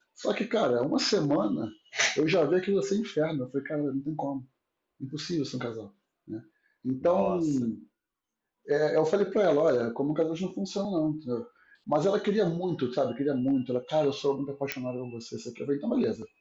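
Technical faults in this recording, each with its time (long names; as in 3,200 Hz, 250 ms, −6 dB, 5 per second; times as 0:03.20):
0:14.72: click −12 dBFS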